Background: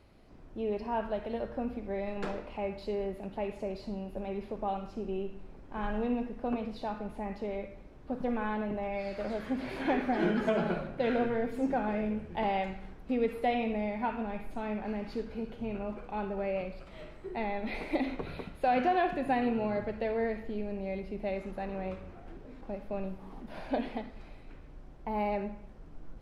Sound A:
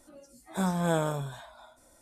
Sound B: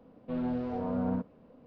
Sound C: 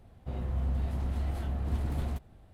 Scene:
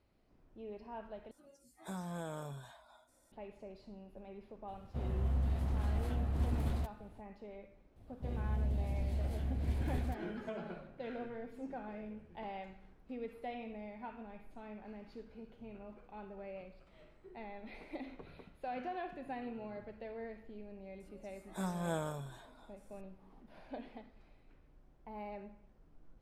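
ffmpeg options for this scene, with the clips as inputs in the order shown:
-filter_complex "[1:a]asplit=2[a][b];[3:a]asplit=2[c][d];[0:a]volume=-14dB[e];[a]acompressor=threshold=-30dB:ratio=5:attack=11:release=63:knee=6:detection=rms[f];[d]equalizer=f=1.3k:w=1.7:g=-13.5[g];[e]asplit=2[h][i];[h]atrim=end=1.314[j];[f]atrim=end=2.01,asetpts=PTS-STARTPTS,volume=-10dB[k];[i]atrim=start=3.316[l];[c]atrim=end=2.53,asetpts=PTS-STARTPTS,volume=-2.5dB,afade=t=in:d=0.004:c=hsin,afade=t=out:st=2.526:d=0.004:c=hsin,adelay=4680[m];[g]atrim=end=2.53,asetpts=PTS-STARTPTS,volume=-4dB,afade=t=in:d=0.004:c=hsin,afade=t=out:st=2.526:d=0.004:c=hsin,adelay=7960[n];[b]atrim=end=2.01,asetpts=PTS-STARTPTS,volume=-10dB,afade=t=in:d=0.004:c=hsin,afade=t=out:st=2.006:d=0.004:c=hsin,adelay=926100S[o];[j][k]acrossfade=d=0.004:c1=hsin:c2=hsin[p];[p][l]acrossfade=d=0.004:c1=hsin:c2=hsin[q];[q][m][n][o]amix=inputs=4:normalize=0"

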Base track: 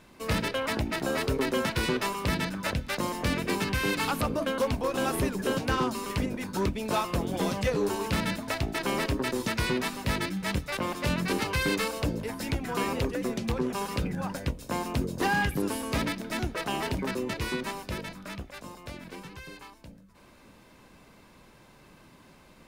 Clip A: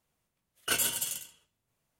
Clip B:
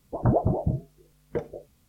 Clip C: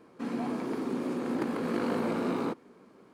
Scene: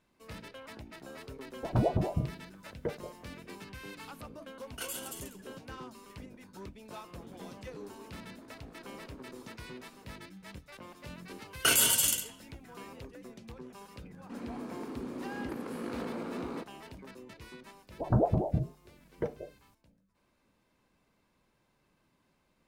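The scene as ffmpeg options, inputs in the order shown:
-filter_complex "[2:a]asplit=2[a][b];[1:a]asplit=2[c][d];[3:a]asplit=2[e][f];[0:a]volume=-18dB[g];[e]acompressor=threshold=-49dB:ratio=6:attack=3.2:release=140:knee=1:detection=peak[h];[d]alimiter=level_in=22.5dB:limit=-1dB:release=50:level=0:latency=1[i];[f]acontrast=51[j];[a]atrim=end=1.88,asetpts=PTS-STARTPTS,volume=-5.5dB,afade=t=in:d=0.004:c=hsin,afade=t=out:st=1.876:d=0.004:c=hsin,adelay=1500[k];[c]atrim=end=1.99,asetpts=PTS-STARTPTS,volume=-11.5dB,afade=t=in:d=0.004:c=hsin,afade=t=out:st=1.986:d=0.004:c=hsin,adelay=4100[l];[h]atrim=end=3.13,asetpts=PTS-STARTPTS,volume=-4.5dB,afade=t=in:d=0.004:c=hsin,afade=t=out:st=3.126:d=0.004:c=hsin,adelay=7030[m];[i]atrim=end=1.99,asetpts=PTS-STARTPTS,volume=-13dB,afade=t=in:d=0.004:c=hsin,afade=t=out:st=1.986:d=0.004:c=hsin,adelay=10970[n];[j]atrim=end=3.13,asetpts=PTS-STARTPTS,volume=-14dB,afade=t=in:d=0.004:c=hsin,afade=t=out:st=3.126:d=0.004:c=hsin,adelay=14100[o];[b]atrim=end=1.88,asetpts=PTS-STARTPTS,volume=-4dB,afade=t=in:d=0.004:c=hsin,afade=t=out:st=1.876:d=0.004:c=hsin,adelay=17870[p];[g][k][l][m][n][o][p]amix=inputs=7:normalize=0"

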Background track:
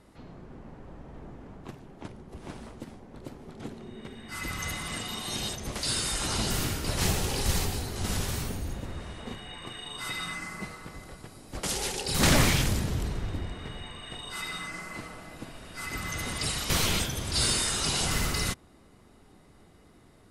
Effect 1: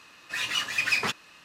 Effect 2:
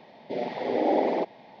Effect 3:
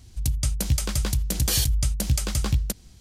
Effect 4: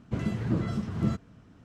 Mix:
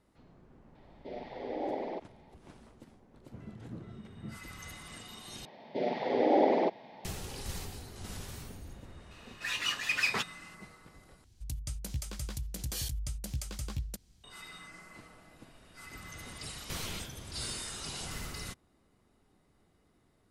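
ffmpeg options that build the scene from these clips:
-filter_complex "[2:a]asplit=2[a][b];[0:a]volume=-12.5dB[c];[4:a]highshelf=f=3.6k:g=-10.5[d];[c]asplit=3[e][f][g];[e]atrim=end=5.454[h];[b]atrim=end=1.6,asetpts=PTS-STARTPTS,volume=-1.5dB[i];[f]atrim=start=7.046:end=11.244[j];[3:a]atrim=end=3,asetpts=PTS-STARTPTS,volume=-14dB[k];[g]atrim=start=14.236[l];[a]atrim=end=1.6,asetpts=PTS-STARTPTS,volume=-12dB,afade=t=in:d=0.004:c=hsin,afade=t=out:st=1.596:d=0.004:c=hsin,adelay=750[m];[d]atrim=end=1.64,asetpts=PTS-STARTPTS,volume=-17.5dB,afade=t=in:d=0.004:c=hsin,afade=t=out:st=1.636:d=0.004:c=hsin,adelay=141561S[n];[1:a]atrim=end=1.44,asetpts=PTS-STARTPTS,volume=-4.5dB,afade=t=in:d=0.004:c=hsin,afade=t=out:st=1.436:d=0.004:c=hsin,adelay=9110[o];[h][i]acrossfade=d=0.004:c1=hsin:c2=hsin[p];[p][j]acrossfade=d=0.004:c1=hsin:c2=hsin[q];[q][k]acrossfade=d=0.004:c1=hsin:c2=hsin[r];[r][l]acrossfade=d=0.004:c1=hsin:c2=hsin[s];[s][m][n][o]amix=inputs=4:normalize=0"

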